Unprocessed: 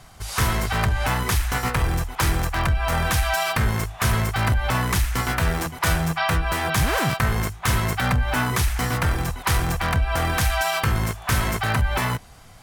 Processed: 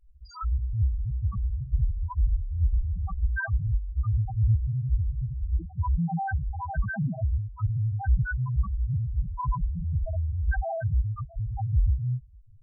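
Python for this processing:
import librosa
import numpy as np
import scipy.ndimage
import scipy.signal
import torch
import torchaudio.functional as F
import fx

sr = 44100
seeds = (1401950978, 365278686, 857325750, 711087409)

y = fx.granulator(x, sr, seeds[0], grain_ms=100.0, per_s=20.0, spray_ms=100.0, spread_st=0)
y = fx.spec_topn(y, sr, count=1)
y = y * 10.0 ** (5.0 / 20.0)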